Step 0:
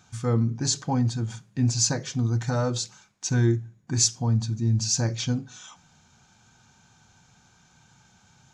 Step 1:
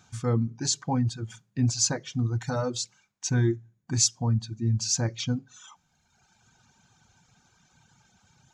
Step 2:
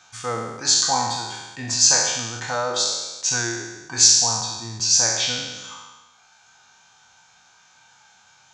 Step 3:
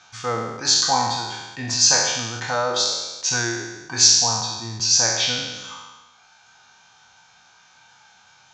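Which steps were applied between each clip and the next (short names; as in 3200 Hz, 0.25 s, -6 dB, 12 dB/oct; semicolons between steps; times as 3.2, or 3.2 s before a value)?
reverb removal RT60 1.4 s; gain -1 dB
spectral trails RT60 1.21 s; three-band isolator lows -20 dB, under 570 Hz, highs -14 dB, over 8000 Hz; gain +8 dB
LPF 6300 Hz 24 dB/oct; gain +2 dB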